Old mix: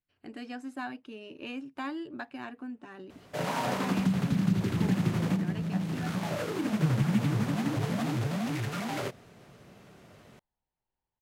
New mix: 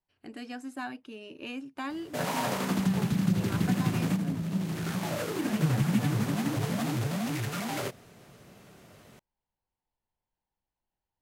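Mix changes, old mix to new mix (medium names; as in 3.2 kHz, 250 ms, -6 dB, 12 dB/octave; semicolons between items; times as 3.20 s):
second voice: entry -1.85 s; background: entry -1.20 s; master: add treble shelf 6.8 kHz +9 dB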